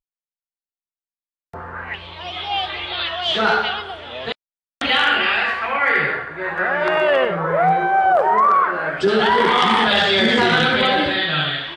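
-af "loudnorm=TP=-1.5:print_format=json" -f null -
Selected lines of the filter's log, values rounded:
"input_i" : "-16.8",
"input_tp" : "-6.6",
"input_lra" : "7.2",
"input_thresh" : "-27.3",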